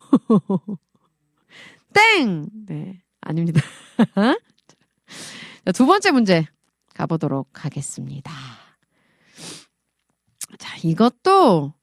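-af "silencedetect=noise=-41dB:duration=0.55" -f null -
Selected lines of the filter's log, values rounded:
silence_start: 0.76
silence_end: 1.52 | silence_duration: 0.76
silence_start: 8.63
silence_end: 9.36 | silence_duration: 0.73
silence_start: 9.63
silence_end: 10.41 | silence_duration: 0.78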